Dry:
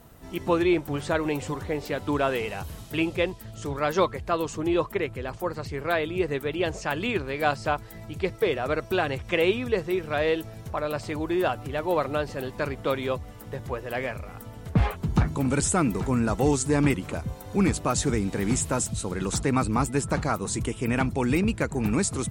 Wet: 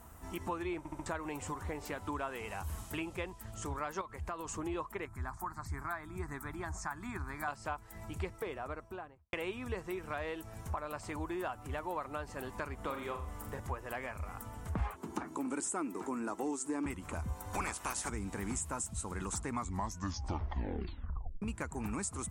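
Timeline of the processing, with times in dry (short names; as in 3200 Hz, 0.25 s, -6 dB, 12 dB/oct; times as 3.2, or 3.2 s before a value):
0.78 stutter in place 0.07 s, 4 plays
4.01–4.49 compressor 4:1, threshold -29 dBFS
5.05–7.48 fixed phaser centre 1200 Hz, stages 4
8.16–9.33 studio fade out
12.76–13.6 flutter echo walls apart 7 m, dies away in 0.38 s
14.95–16.86 resonant high-pass 310 Hz, resonance Q 2.7
17.53–18.08 spectral limiter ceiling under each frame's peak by 23 dB
19.45 tape stop 1.97 s
whole clip: graphic EQ 125/500/1000/4000/8000 Hz -8/-6/+7/-7/+6 dB; compressor 3:1, threshold -35 dBFS; bell 75 Hz +9 dB 0.76 oct; gain -3.5 dB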